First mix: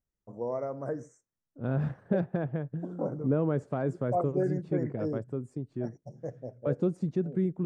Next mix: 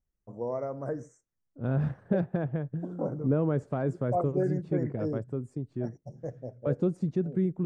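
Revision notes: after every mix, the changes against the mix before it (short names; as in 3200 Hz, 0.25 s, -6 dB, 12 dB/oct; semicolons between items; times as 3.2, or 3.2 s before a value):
master: add low shelf 70 Hz +9.5 dB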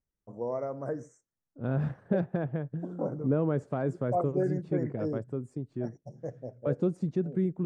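master: add low shelf 70 Hz -9.5 dB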